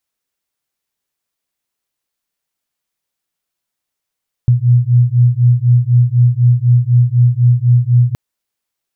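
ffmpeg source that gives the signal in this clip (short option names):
-f lavfi -i "aevalsrc='0.299*(sin(2*PI*120*t)+sin(2*PI*124*t))':d=3.67:s=44100"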